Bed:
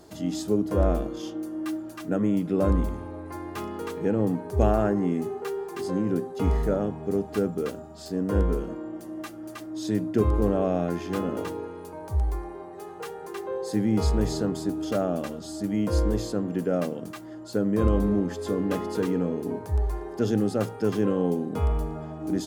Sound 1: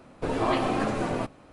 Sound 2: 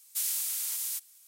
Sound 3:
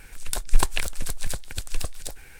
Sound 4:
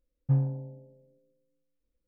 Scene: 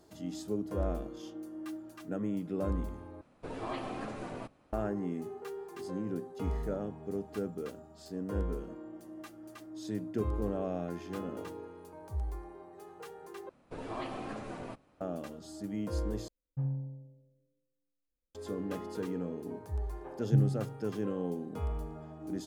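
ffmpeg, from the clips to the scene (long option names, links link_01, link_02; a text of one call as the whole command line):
ffmpeg -i bed.wav -i cue0.wav -i cue1.wav -i cue2.wav -i cue3.wav -filter_complex "[1:a]asplit=2[link_01][link_02];[4:a]asplit=2[link_03][link_04];[0:a]volume=-10.5dB[link_05];[link_03]asplit=2[link_06][link_07];[link_07]adelay=66,lowpass=frequency=810:poles=1,volume=-9.5dB,asplit=2[link_08][link_09];[link_09]adelay=66,lowpass=frequency=810:poles=1,volume=0.45,asplit=2[link_10][link_11];[link_11]adelay=66,lowpass=frequency=810:poles=1,volume=0.45,asplit=2[link_12][link_13];[link_13]adelay=66,lowpass=frequency=810:poles=1,volume=0.45,asplit=2[link_14][link_15];[link_15]adelay=66,lowpass=frequency=810:poles=1,volume=0.45[link_16];[link_06][link_08][link_10][link_12][link_14][link_16]amix=inputs=6:normalize=0[link_17];[link_04]acrossover=split=460[link_18][link_19];[link_18]adelay=280[link_20];[link_20][link_19]amix=inputs=2:normalize=0[link_21];[link_05]asplit=4[link_22][link_23][link_24][link_25];[link_22]atrim=end=3.214[link_26];[link_01]atrim=end=1.52,asetpts=PTS-STARTPTS,volume=-13dB[link_27];[link_23]atrim=start=4.726:end=13.494[link_28];[link_02]atrim=end=1.52,asetpts=PTS-STARTPTS,volume=-14dB[link_29];[link_24]atrim=start=15.006:end=16.284[link_30];[link_17]atrim=end=2.07,asetpts=PTS-STARTPTS,volume=-10.5dB[link_31];[link_25]atrim=start=18.346[link_32];[link_21]atrim=end=2.07,asetpts=PTS-STARTPTS,volume=-1dB,afade=type=in:duration=0.004:curve=hsin,afade=type=out:start_time=2.066:duration=0.004:curve=hsin,adelay=19750[link_33];[link_26][link_27]acrossfade=duration=0.004:curve1=hsin:curve2=hsin[link_34];[link_34][link_28]acrossfade=duration=0.004:curve1=hsin:curve2=hsin[link_35];[link_35][link_29]acrossfade=duration=0.004:curve1=hsin:curve2=hsin[link_36];[link_36][link_30]acrossfade=duration=0.004:curve1=hsin:curve2=hsin[link_37];[link_37][link_31]acrossfade=duration=0.004:curve1=hsin:curve2=hsin[link_38];[link_38][link_32]acrossfade=duration=0.004:curve1=hsin:curve2=hsin[link_39];[link_39][link_33]amix=inputs=2:normalize=0" out.wav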